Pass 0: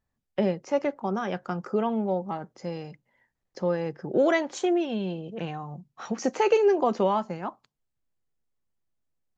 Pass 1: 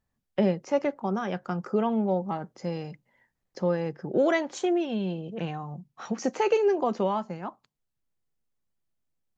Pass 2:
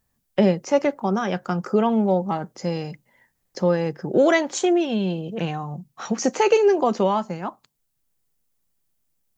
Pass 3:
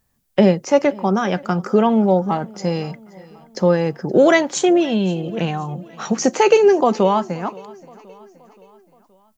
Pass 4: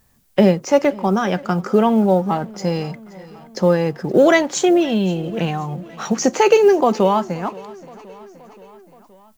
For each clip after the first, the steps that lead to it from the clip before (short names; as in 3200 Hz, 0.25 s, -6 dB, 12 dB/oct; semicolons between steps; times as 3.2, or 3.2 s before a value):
bell 180 Hz +2.5 dB; vocal rider within 5 dB 2 s; gain -2.5 dB
high shelf 6600 Hz +12 dB; gain +6 dB
feedback echo 0.524 s, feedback 53%, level -23 dB; gain +4.5 dB
G.711 law mismatch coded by mu